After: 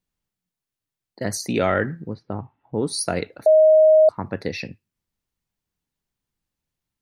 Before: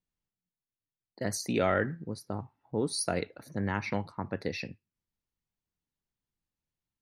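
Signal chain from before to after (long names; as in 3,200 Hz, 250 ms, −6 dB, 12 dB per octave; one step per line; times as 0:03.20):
0:02.13–0:02.83: Chebyshev low-pass filter 3,100 Hz, order 3
0:03.46–0:04.09: beep over 626 Hz −16 dBFS
level +6.5 dB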